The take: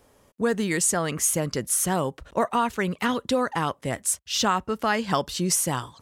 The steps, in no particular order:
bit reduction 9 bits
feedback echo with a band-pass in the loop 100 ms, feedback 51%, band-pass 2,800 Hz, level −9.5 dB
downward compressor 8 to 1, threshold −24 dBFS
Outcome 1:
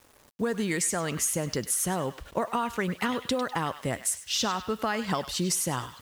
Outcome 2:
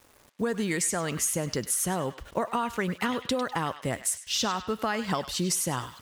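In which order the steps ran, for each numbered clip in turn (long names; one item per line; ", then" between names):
downward compressor, then feedback echo with a band-pass in the loop, then bit reduction
bit reduction, then downward compressor, then feedback echo with a band-pass in the loop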